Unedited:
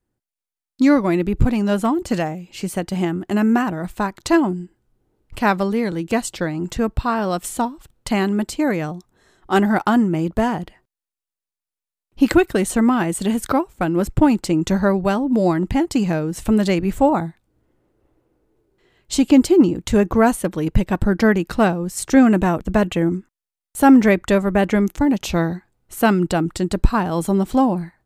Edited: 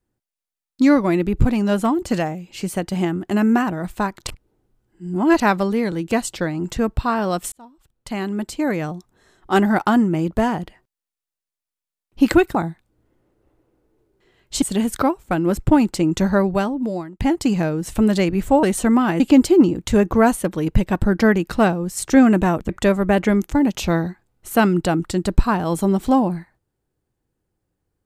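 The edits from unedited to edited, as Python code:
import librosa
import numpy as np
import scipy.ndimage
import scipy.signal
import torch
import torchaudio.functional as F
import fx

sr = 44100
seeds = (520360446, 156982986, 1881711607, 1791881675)

y = fx.edit(x, sr, fx.reverse_span(start_s=4.27, length_s=1.13),
    fx.fade_in_span(start_s=7.52, length_s=1.41),
    fx.swap(start_s=12.55, length_s=0.57, other_s=17.13, other_length_s=2.07),
    fx.fade_out_span(start_s=15.01, length_s=0.69),
    fx.cut(start_s=22.69, length_s=1.46), tone=tone)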